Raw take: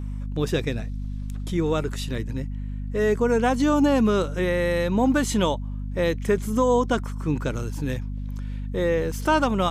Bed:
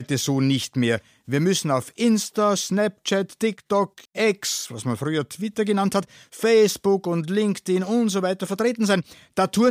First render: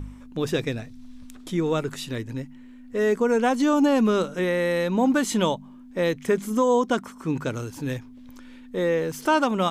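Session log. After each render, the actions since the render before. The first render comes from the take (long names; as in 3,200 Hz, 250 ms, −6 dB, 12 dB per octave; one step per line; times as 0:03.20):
hum removal 50 Hz, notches 4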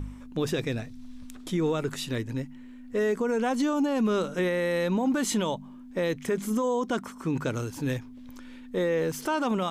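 brickwall limiter −19 dBFS, peak gain reduction 8.5 dB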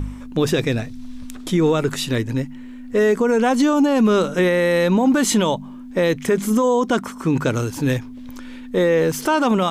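level +9.5 dB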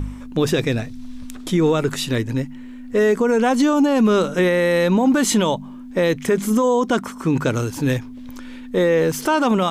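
no processing that can be heard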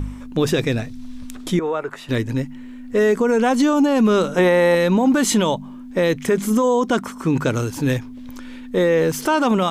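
0:01.59–0:02.09: three-way crossover with the lows and the highs turned down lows −18 dB, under 460 Hz, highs −18 dB, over 2,000 Hz
0:04.34–0:04.75: parametric band 810 Hz +11 dB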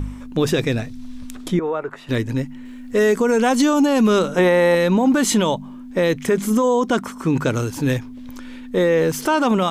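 0:01.48–0:02.07: high-shelf EQ 3,200 Hz −10 dB
0:02.65–0:04.19: high-shelf EQ 3,300 Hz +6 dB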